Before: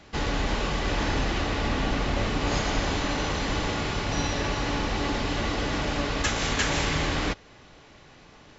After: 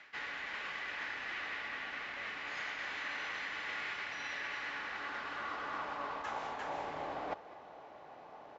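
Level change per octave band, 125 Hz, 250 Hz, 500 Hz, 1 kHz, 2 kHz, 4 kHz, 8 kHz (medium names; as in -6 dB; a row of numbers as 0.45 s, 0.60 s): -32.5 dB, -24.5 dB, -16.0 dB, -10.0 dB, -7.5 dB, -15.5 dB, no reading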